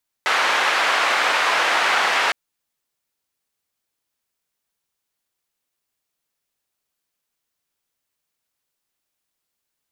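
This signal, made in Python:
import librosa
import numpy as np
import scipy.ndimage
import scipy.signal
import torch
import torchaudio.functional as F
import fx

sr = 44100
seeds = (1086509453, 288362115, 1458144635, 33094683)

y = fx.band_noise(sr, seeds[0], length_s=2.06, low_hz=770.0, high_hz=1900.0, level_db=-19.0)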